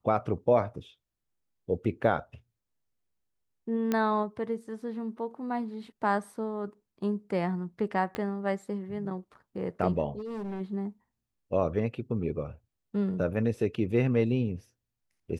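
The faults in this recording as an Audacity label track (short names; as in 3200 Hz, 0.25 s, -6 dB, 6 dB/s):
3.920000	3.920000	pop -15 dBFS
8.150000	8.150000	pop -19 dBFS
10.180000	10.610000	clipped -33 dBFS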